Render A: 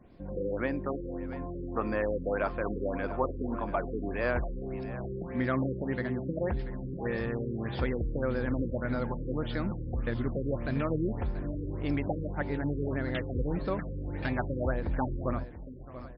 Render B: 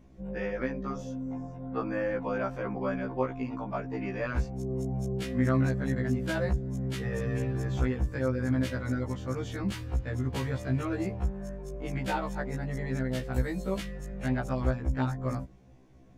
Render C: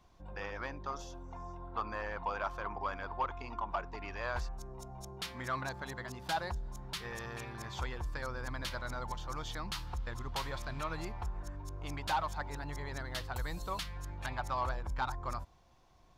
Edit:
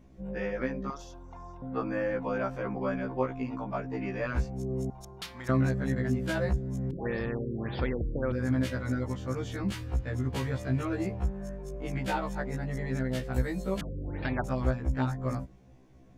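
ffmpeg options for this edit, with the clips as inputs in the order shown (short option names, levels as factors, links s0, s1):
-filter_complex "[2:a]asplit=2[s0][s1];[0:a]asplit=2[s2][s3];[1:a]asplit=5[s4][s5][s6][s7][s8];[s4]atrim=end=0.902[s9];[s0]atrim=start=0.898:end=1.622[s10];[s5]atrim=start=1.618:end=4.902[s11];[s1]atrim=start=4.898:end=5.492[s12];[s6]atrim=start=5.488:end=6.912[s13];[s2]atrim=start=6.908:end=8.322[s14];[s7]atrim=start=8.318:end=13.812[s15];[s3]atrim=start=13.808:end=14.442[s16];[s8]atrim=start=14.438[s17];[s9][s10]acrossfade=d=0.004:c1=hsin:c2=hsin[s18];[s18][s11]acrossfade=d=0.004:c1=hsin:c2=hsin[s19];[s19][s12]acrossfade=d=0.004:c1=hsin:c2=hsin[s20];[s20][s13]acrossfade=d=0.004:c1=hsin:c2=hsin[s21];[s21][s14]acrossfade=d=0.004:c1=hsin:c2=hsin[s22];[s22][s15]acrossfade=d=0.004:c1=hsin:c2=hsin[s23];[s23][s16]acrossfade=d=0.004:c1=hsin:c2=hsin[s24];[s24][s17]acrossfade=d=0.004:c1=hsin:c2=hsin"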